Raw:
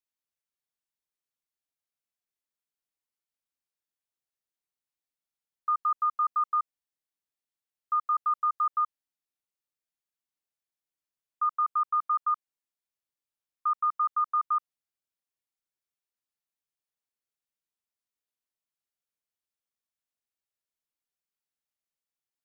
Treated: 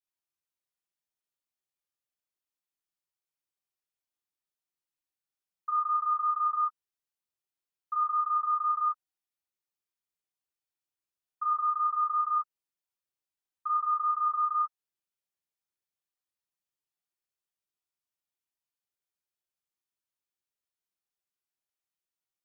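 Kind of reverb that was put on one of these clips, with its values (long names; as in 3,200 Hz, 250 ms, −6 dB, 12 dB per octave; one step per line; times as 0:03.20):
reverb whose tail is shaped and stops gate 100 ms flat, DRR −6.5 dB
level −9.5 dB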